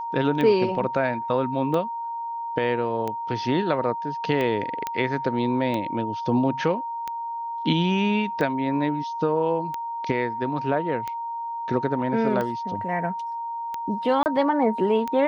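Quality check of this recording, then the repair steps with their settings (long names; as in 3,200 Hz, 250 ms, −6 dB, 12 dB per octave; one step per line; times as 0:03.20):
scratch tick 45 rpm −16 dBFS
whistle 930 Hz −28 dBFS
0:04.87: click −12 dBFS
0:14.23–0:14.26: drop-out 29 ms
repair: click removal
notch filter 930 Hz, Q 30
repair the gap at 0:14.23, 29 ms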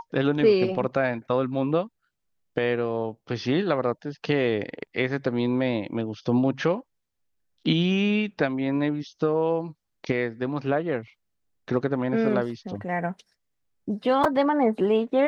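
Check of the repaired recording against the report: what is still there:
none of them is left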